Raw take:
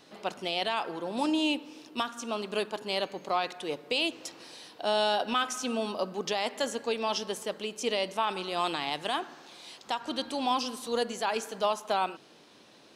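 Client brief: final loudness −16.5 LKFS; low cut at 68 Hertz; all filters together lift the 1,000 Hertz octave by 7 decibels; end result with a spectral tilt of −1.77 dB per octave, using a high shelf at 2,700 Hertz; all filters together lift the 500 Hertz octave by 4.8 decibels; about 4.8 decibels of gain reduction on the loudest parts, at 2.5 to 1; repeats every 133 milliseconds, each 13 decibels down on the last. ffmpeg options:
ffmpeg -i in.wav -af "highpass=68,equalizer=frequency=500:width_type=o:gain=3.5,equalizer=frequency=1000:width_type=o:gain=8.5,highshelf=frequency=2700:gain=-6.5,acompressor=threshold=-24dB:ratio=2.5,aecho=1:1:133|266|399:0.224|0.0493|0.0108,volume=13dB" out.wav

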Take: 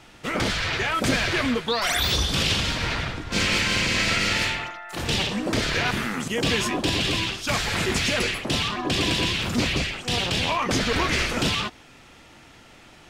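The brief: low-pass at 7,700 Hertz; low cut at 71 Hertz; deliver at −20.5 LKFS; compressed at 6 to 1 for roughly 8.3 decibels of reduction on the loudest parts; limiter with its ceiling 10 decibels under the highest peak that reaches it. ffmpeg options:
ffmpeg -i in.wav -af "highpass=71,lowpass=7700,acompressor=threshold=-28dB:ratio=6,volume=13dB,alimiter=limit=-12.5dB:level=0:latency=1" out.wav

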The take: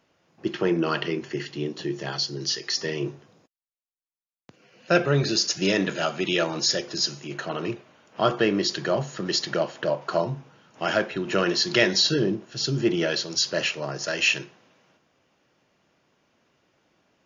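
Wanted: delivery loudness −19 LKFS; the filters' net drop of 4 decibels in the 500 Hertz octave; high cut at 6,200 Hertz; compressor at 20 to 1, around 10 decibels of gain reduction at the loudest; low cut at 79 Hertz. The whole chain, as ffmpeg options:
ffmpeg -i in.wav -af "highpass=79,lowpass=6200,equalizer=frequency=500:width_type=o:gain=-5.5,acompressor=threshold=-26dB:ratio=20,volume=12.5dB" out.wav

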